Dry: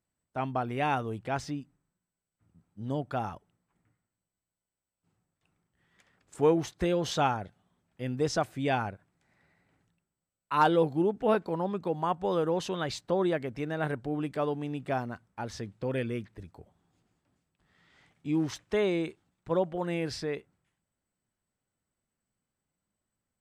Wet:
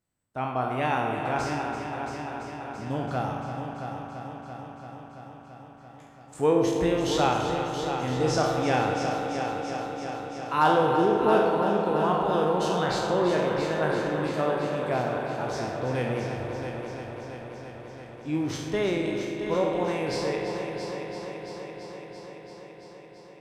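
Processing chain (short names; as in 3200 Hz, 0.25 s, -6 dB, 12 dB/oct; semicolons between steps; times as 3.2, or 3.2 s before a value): spectral trails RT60 0.71 s; multi-head echo 0.337 s, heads first and second, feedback 69%, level -10.5 dB; spring tank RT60 3 s, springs 39 ms, chirp 65 ms, DRR 3.5 dB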